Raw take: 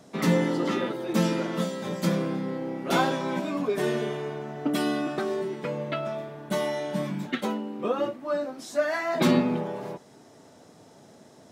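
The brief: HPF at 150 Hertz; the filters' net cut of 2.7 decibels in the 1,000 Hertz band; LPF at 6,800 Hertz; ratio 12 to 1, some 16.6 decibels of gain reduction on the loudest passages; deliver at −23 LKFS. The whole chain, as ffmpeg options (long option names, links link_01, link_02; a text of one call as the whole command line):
ffmpeg -i in.wav -af "highpass=150,lowpass=6800,equalizer=frequency=1000:width_type=o:gain=-3.5,acompressor=threshold=-35dB:ratio=12,volume=16.5dB" out.wav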